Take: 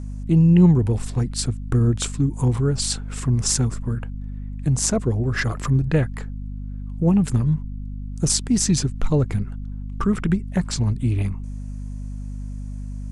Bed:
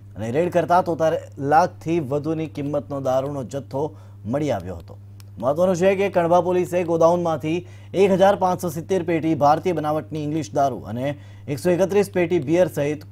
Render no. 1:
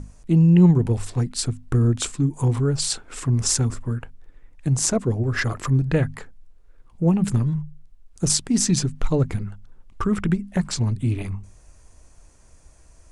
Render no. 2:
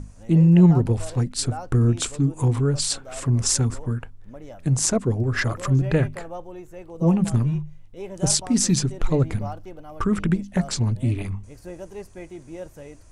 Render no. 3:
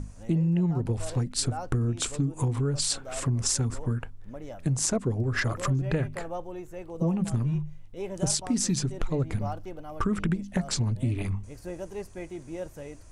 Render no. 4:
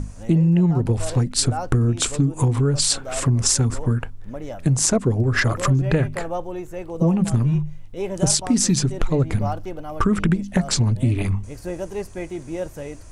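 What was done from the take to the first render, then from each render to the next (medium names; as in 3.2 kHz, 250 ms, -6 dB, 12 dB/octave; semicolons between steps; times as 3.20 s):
hum notches 50/100/150/200/250 Hz
add bed -19 dB
compression 6:1, threshold -23 dBFS, peak gain reduction 13 dB
trim +8 dB; peak limiter -3 dBFS, peak gain reduction 1 dB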